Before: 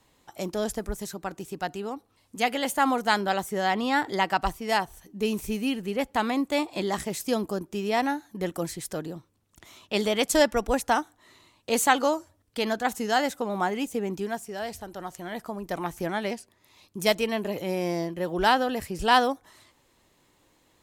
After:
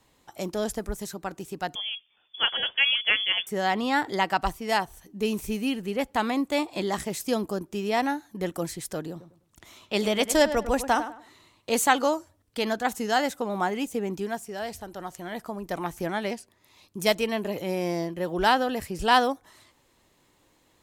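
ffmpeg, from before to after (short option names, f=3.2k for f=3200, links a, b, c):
-filter_complex "[0:a]asettb=1/sr,asplit=3[a][b][c];[a]atrim=end=1.754[d];[b]atrim=start=1.75:end=3.47,asetpts=PTS-STARTPTS,afade=t=in:d=0.004:c=qsin,afade=t=out:st=1.716:d=0.004:c=qsin,lowpass=f=3.1k:t=q:w=0.5098,lowpass=f=3.1k:t=q:w=0.6013,lowpass=f=3.1k:t=q:w=0.9,lowpass=f=3.1k:t=q:w=2.563,afreqshift=-3600[e];[c]atrim=start=3.466[f];[d][e]acrossfade=d=0.004:c1=hsin:c2=qsin[g];[g][f]acrossfade=d=0.004:c1=qsin:c2=hsin,asettb=1/sr,asplit=3[h][i][j];[h]atrim=end=9.104[k];[i]atrim=start=9.1:end=11.72,asetpts=PTS-STARTPTS,afade=t=in:d=0.004:c=qsin,afade=t=out:st=2.616:d=0.004:c=qsin,asplit=2[l][m];[m]adelay=101,lowpass=f=2.4k:p=1,volume=-11dB,asplit=2[n][o];[o]adelay=101,lowpass=f=2.4k:p=1,volume=0.29,asplit=2[p][q];[q]adelay=101,lowpass=f=2.4k:p=1,volume=0.29[r];[l][n][p][r]amix=inputs=4:normalize=0,atrim=end_sample=115542[s];[j]atrim=start=11.716[t];[k][s]acrossfade=d=0.004:c1=hsin:c2=qsin[u];[u][t]acrossfade=d=0.004:c1=qsin:c2=hsin"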